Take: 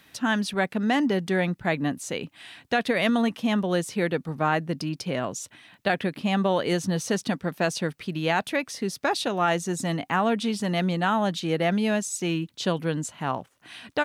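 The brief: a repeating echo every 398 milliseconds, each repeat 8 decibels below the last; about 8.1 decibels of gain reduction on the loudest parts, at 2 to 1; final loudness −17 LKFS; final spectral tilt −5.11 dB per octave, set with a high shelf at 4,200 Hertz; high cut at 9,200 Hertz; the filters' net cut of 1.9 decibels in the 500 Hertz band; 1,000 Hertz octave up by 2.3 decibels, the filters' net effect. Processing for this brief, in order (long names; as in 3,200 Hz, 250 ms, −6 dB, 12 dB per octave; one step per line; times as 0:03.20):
low-pass filter 9,200 Hz
parametric band 500 Hz −4 dB
parametric band 1,000 Hz +5 dB
high-shelf EQ 4,200 Hz −5 dB
downward compressor 2 to 1, threshold −33 dBFS
repeating echo 398 ms, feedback 40%, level −8 dB
level +15.5 dB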